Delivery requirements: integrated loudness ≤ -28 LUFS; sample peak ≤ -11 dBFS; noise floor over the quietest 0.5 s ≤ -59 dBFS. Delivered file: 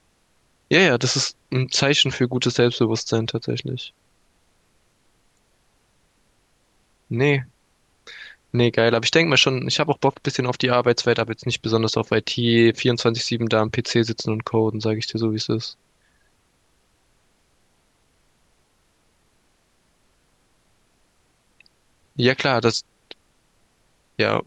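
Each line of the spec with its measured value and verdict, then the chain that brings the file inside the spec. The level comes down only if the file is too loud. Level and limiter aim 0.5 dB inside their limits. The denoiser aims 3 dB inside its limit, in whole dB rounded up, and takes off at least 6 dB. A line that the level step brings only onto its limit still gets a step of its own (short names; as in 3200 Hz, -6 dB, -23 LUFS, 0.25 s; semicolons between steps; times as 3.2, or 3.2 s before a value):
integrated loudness -20.5 LUFS: fail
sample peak -4.0 dBFS: fail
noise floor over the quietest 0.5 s -64 dBFS: OK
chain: gain -8 dB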